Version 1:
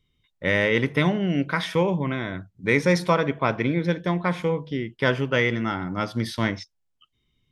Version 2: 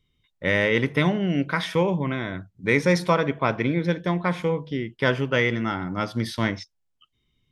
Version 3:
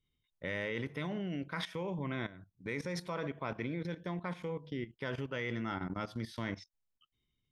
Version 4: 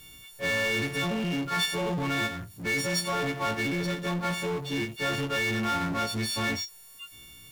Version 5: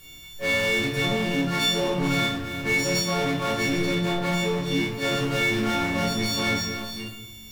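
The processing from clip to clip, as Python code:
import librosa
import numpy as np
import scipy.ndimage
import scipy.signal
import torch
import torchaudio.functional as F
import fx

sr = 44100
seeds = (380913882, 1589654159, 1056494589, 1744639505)

y1 = x
y2 = fx.level_steps(y1, sr, step_db=15)
y2 = y2 * librosa.db_to_amplitude(-7.0)
y3 = fx.freq_snap(y2, sr, grid_st=4)
y3 = fx.power_curve(y3, sr, exponent=0.5)
y4 = fx.reverse_delay(y3, sr, ms=472, wet_db=-9.0)
y4 = fx.room_shoebox(y4, sr, seeds[0], volume_m3=140.0, walls='mixed', distance_m=1.1)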